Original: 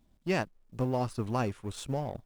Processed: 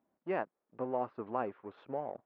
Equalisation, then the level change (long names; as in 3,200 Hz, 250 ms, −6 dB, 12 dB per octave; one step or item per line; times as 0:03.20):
high-pass filter 400 Hz 12 dB per octave
low-pass filter 1,600 Hz 12 dB per octave
high-frequency loss of the air 310 metres
0.0 dB